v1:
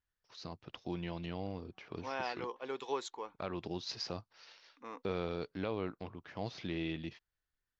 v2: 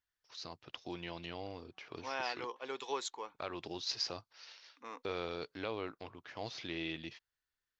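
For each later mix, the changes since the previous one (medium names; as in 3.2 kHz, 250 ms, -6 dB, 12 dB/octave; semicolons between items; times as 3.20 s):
first voice: add peaking EQ 190 Hz -10 dB 0.23 oct; master: add tilt EQ +2 dB/octave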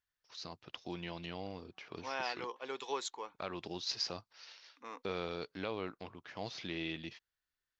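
first voice: add peaking EQ 190 Hz +10 dB 0.23 oct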